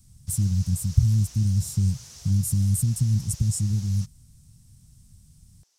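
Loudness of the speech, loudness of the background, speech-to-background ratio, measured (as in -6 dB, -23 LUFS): -24.5 LUFS, -43.5 LUFS, 19.0 dB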